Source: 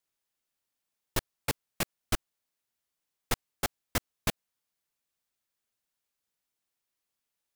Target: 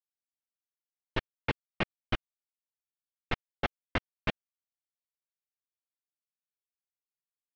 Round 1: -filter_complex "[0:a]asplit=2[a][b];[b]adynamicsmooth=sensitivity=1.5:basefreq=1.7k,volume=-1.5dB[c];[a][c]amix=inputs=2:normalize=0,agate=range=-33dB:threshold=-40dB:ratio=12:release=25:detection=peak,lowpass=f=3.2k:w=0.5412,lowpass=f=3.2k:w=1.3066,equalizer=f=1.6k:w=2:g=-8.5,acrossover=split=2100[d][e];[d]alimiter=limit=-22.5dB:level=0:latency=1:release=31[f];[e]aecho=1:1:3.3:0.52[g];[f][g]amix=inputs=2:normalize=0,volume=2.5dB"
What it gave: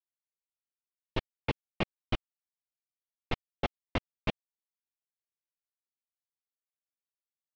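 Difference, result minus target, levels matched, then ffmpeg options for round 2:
2000 Hz band -3.0 dB
-filter_complex "[0:a]asplit=2[a][b];[b]adynamicsmooth=sensitivity=1.5:basefreq=1.7k,volume=-1.5dB[c];[a][c]amix=inputs=2:normalize=0,agate=range=-33dB:threshold=-40dB:ratio=12:release=25:detection=peak,lowpass=f=3.2k:w=0.5412,lowpass=f=3.2k:w=1.3066,acrossover=split=2100[d][e];[d]alimiter=limit=-22.5dB:level=0:latency=1:release=31[f];[e]aecho=1:1:3.3:0.52[g];[f][g]amix=inputs=2:normalize=0,volume=2.5dB"

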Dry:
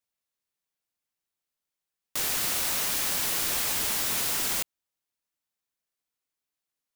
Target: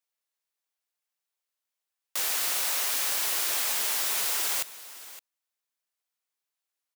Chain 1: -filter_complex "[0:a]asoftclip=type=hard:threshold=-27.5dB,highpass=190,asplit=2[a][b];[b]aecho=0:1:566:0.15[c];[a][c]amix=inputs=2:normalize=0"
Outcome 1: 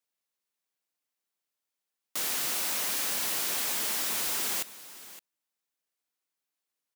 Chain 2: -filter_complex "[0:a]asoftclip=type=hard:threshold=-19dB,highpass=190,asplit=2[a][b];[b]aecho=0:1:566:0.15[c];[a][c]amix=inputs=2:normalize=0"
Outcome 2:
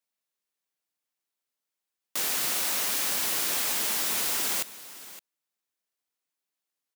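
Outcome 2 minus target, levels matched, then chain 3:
250 Hz band +9.0 dB
-filter_complex "[0:a]asoftclip=type=hard:threshold=-19dB,highpass=490,asplit=2[a][b];[b]aecho=0:1:566:0.15[c];[a][c]amix=inputs=2:normalize=0"

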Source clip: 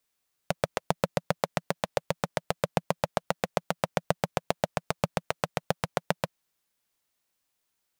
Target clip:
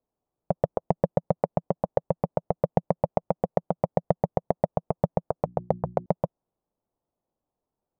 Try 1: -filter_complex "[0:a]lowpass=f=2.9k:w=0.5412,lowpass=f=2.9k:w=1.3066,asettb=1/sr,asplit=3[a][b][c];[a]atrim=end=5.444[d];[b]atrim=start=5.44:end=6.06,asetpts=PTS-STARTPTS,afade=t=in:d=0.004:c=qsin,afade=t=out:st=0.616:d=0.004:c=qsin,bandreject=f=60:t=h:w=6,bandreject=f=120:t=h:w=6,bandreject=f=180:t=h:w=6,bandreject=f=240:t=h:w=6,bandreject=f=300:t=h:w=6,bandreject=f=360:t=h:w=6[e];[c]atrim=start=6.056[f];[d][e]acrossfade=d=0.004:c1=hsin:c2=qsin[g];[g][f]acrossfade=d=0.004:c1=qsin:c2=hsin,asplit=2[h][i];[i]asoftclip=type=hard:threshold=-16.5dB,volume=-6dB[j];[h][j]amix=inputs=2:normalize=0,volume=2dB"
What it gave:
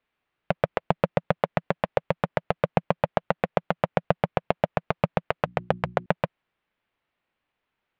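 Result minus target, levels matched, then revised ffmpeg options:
4000 Hz band +19.0 dB
-filter_complex "[0:a]lowpass=f=840:w=0.5412,lowpass=f=840:w=1.3066,asettb=1/sr,asplit=3[a][b][c];[a]atrim=end=5.444[d];[b]atrim=start=5.44:end=6.06,asetpts=PTS-STARTPTS,afade=t=in:d=0.004:c=qsin,afade=t=out:st=0.616:d=0.004:c=qsin,bandreject=f=60:t=h:w=6,bandreject=f=120:t=h:w=6,bandreject=f=180:t=h:w=6,bandreject=f=240:t=h:w=6,bandreject=f=300:t=h:w=6,bandreject=f=360:t=h:w=6[e];[c]atrim=start=6.056[f];[d][e]acrossfade=d=0.004:c1=hsin:c2=qsin[g];[g][f]acrossfade=d=0.004:c1=qsin:c2=hsin,asplit=2[h][i];[i]asoftclip=type=hard:threshold=-16.5dB,volume=-6dB[j];[h][j]amix=inputs=2:normalize=0,volume=2dB"

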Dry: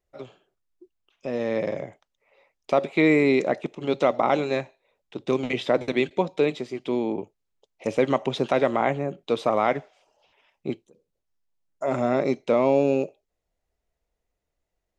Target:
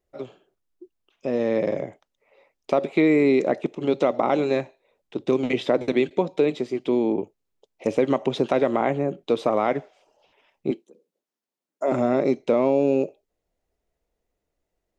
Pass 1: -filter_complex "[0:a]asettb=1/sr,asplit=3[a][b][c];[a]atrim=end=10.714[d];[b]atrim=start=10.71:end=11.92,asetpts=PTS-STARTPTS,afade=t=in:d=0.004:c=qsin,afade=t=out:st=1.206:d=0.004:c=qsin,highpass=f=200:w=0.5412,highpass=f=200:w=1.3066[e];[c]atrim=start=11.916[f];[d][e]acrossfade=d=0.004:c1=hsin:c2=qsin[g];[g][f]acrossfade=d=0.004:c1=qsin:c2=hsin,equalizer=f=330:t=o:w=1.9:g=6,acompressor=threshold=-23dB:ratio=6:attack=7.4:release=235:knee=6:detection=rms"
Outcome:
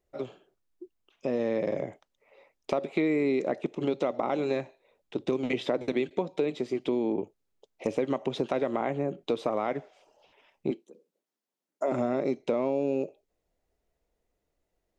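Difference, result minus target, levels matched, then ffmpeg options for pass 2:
compressor: peak gain reduction +8.5 dB
-filter_complex "[0:a]asettb=1/sr,asplit=3[a][b][c];[a]atrim=end=10.714[d];[b]atrim=start=10.71:end=11.92,asetpts=PTS-STARTPTS,afade=t=in:d=0.004:c=qsin,afade=t=out:st=1.206:d=0.004:c=qsin,highpass=f=200:w=0.5412,highpass=f=200:w=1.3066[e];[c]atrim=start=11.916[f];[d][e]acrossfade=d=0.004:c1=hsin:c2=qsin[g];[g][f]acrossfade=d=0.004:c1=qsin:c2=hsin,equalizer=f=330:t=o:w=1.9:g=6,acompressor=threshold=-13dB:ratio=6:attack=7.4:release=235:knee=6:detection=rms"

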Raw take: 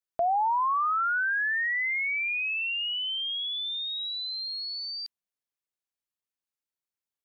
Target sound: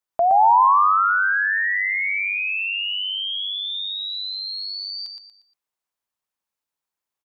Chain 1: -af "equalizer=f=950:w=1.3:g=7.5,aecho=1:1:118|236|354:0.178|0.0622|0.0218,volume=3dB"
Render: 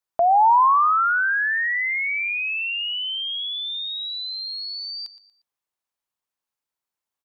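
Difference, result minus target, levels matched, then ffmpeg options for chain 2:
echo-to-direct -10 dB
-af "equalizer=f=950:w=1.3:g=7.5,aecho=1:1:118|236|354|472:0.562|0.197|0.0689|0.0241,volume=3dB"

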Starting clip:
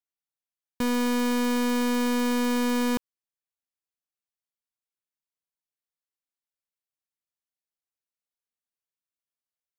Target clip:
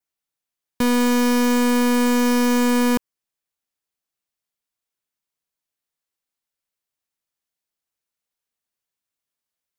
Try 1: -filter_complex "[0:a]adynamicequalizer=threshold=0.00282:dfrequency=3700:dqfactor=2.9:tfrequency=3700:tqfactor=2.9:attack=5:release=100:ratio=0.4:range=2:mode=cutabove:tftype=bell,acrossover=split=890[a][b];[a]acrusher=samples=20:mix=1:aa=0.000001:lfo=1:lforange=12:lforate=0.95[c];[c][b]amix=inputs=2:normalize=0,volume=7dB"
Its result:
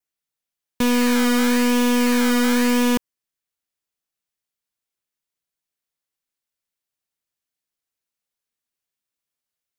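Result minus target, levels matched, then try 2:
decimation with a swept rate: distortion +11 dB
-filter_complex "[0:a]adynamicequalizer=threshold=0.00282:dfrequency=3700:dqfactor=2.9:tfrequency=3700:tqfactor=2.9:attack=5:release=100:ratio=0.4:range=2:mode=cutabove:tftype=bell,acrossover=split=890[a][b];[a]acrusher=samples=6:mix=1:aa=0.000001:lfo=1:lforange=3.6:lforate=0.95[c];[c][b]amix=inputs=2:normalize=0,volume=7dB"

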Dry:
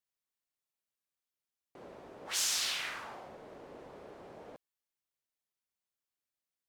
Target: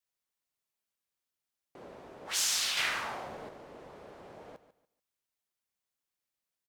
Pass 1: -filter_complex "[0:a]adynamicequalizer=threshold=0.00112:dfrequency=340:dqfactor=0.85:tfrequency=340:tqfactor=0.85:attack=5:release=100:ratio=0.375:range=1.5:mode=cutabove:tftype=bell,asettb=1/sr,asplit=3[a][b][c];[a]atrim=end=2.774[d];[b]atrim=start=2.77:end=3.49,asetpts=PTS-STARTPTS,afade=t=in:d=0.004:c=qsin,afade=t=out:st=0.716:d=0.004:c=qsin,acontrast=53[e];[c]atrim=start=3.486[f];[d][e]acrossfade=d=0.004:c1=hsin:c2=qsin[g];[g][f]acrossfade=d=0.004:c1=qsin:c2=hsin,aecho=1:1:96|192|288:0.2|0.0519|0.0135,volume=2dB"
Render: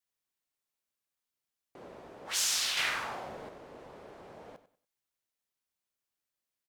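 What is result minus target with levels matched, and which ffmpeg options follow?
echo 49 ms early
-filter_complex "[0:a]adynamicequalizer=threshold=0.00112:dfrequency=340:dqfactor=0.85:tfrequency=340:tqfactor=0.85:attack=5:release=100:ratio=0.375:range=1.5:mode=cutabove:tftype=bell,asettb=1/sr,asplit=3[a][b][c];[a]atrim=end=2.774[d];[b]atrim=start=2.77:end=3.49,asetpts=PTS-STARTPTS,afade=t=in:d=0.004:c=qsin,afade=t=out:st=0.716:d=0.004:c=qsin,acontrast=53[e];[c]atrim=start=3.486[f];[d][e]acrossfade=d=0.004:c1=hsin:c2=qsin[g];[g][f]acrossfade=d=0.004:c1=qsin:c2=hsin,aecho=1:1:145|290|435:0.2|0.0519|0.0135,volume=2dB"

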